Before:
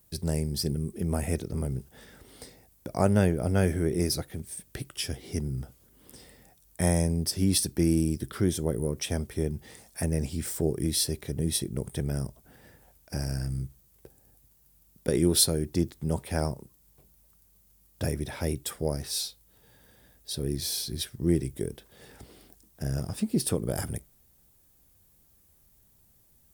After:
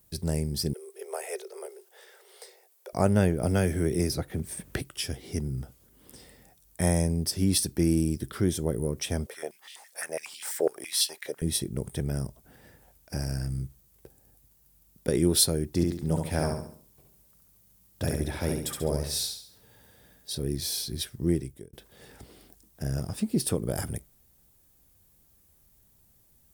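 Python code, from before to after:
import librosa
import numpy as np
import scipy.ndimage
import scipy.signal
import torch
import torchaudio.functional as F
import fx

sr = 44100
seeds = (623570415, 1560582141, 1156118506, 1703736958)

y = fx.cheby1_highpass(x, sr, hz=370.0, order=10, at=(0.73, 2.93))
y = fx.band_squash(y, sr, depth_pct=70, at=(3.43, 4.81))
y = fx.filter_held_highpass(y, sr, hz=12.0, low_hz=520.0, high_hz=3000.0, at=(9.26, 11.42))
y = fx.echo_feedback(y, sr, ms=69, feedback_pct=41, wet_db=-4.0, at=(15.75, 20.36), fade=0.02)
y = fx.edit(y, sr, fx.fade_out_span(start_s=21.25, length_s=0.48), tone=tone)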